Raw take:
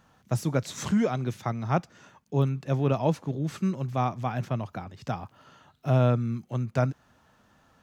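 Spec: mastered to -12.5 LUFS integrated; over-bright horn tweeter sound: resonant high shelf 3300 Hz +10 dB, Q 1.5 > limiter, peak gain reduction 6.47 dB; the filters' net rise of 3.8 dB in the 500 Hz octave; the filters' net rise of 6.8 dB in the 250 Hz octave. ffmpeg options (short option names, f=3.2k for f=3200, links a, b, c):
-af "equalizer=f=250:t=o:g=8,equalizer=f=500:t=o:g=3,highshelf=f=3.3k:t=q:w=1.5:g=10,volume=14dB,alimiter=limit=-0.5dB:level=0:latency=1"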